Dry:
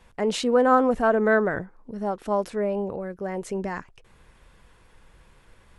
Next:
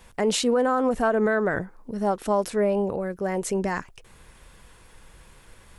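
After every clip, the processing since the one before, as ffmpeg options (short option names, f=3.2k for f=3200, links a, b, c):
-af "highshelf=f=5.8k:g=10.5,alimiter=limit=-17dB:level=0:latency=1:release=196,volume=3.5dB"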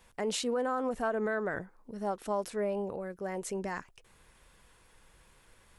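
-af "lowshelf=f=280:g=-4,volume=-8.5dB"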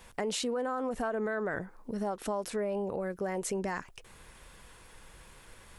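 -filter_complex "[0:a]asplit=2[a][b];[b]alimiter=level_in=5dB:limit=-24dB:level=0:latency=1,volume=-5dB,volume=0.5dB[c];[a][c]amix=inputs=2:normalize=0,acompressor=threshold=-33dB:ratio=3,volume=1.5dB"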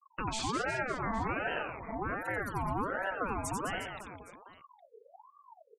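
-af "afftfilt=real='re*gte(hypot(re,im),0.0178)':imag='im*gte(hypot(re,im),0.0178)':win_size=1024:overlap=0.75,aecho=1:1:90|207|359.1|556.8|813.9:0.631|0.398|0.251|0.158|0.1,aeval=exprs='val(0)*sin(2*PI*800*n/s+800*0.45/1.3*sin(2*PI*1.3*n/s))':c=same"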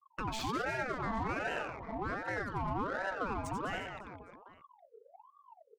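-filter_complex "[0:a]asplit=2[a][b];[b]asoftclip=type=tanh:threshold=-29dB,volume=-7dB[c];[a][c]amix=inputs=2:normalize=0,adynamicsmooth=sensitivity=8:basefreq=2.2k,volume=-4dB"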